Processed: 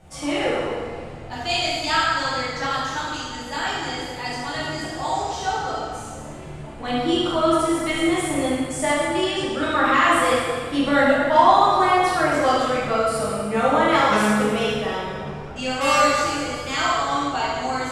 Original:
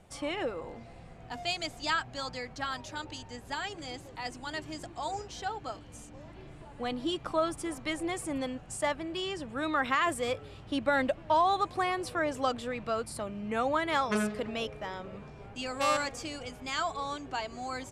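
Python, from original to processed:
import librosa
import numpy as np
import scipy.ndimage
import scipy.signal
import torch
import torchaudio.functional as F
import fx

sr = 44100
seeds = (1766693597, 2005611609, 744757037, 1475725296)

y = fx.rev_plate(x, sr, seeds[0], rt60_s=1.8, hf_ratio=0.85, predelay_ms=0, drr_db=-9.0)
y = y * librosa.db_to_amplitude(2.5)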